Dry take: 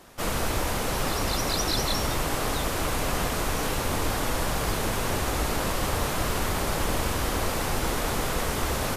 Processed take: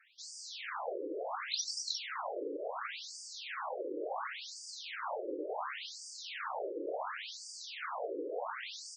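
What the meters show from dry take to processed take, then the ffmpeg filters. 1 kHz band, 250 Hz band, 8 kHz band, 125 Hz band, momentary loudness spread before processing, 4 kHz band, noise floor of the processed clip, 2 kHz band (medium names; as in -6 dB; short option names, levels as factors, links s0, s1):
-11.5 dB, -16.5 dB, -14.5 dB, under -40 dB, 2 LU, -11.0 dB, -49 dBFS, -12.5 dB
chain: -af "adynamicsmooth=sensitivity=4:basefreq=5200,afftfilt=real='re*between(b*sr/1024,390*pow(6600/390,0.5+0.5*sin(2*PI*0.7*pts/sr))/1.41,390*pow(6600/390,0.5+0.5*sin(2*PI*0.7*pts/sr))*1.41)':imag='im*between(b*sr/1024,390*pow(6600/390,0.5+0.5*sin(2*PI*0.7*pts/sr))/1.41,390*pow(6600/390,0.5+0.5*sin(2*PI*0.7*pts/sr))*1.41)':win_size=1024:overlap=0.75,volume=0.668"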